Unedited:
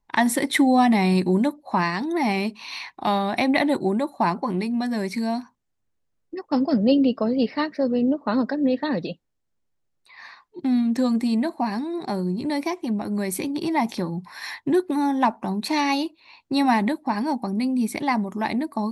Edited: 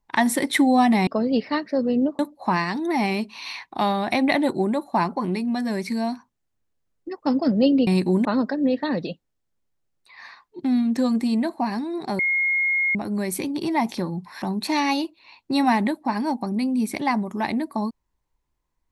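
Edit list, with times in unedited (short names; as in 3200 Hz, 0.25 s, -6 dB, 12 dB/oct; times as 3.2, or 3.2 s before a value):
1.07–1.45 swap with 7.13–8.25
12.19–12.95 bleep 2150 Hz -18.5 dBFS
14.42–15.43 cut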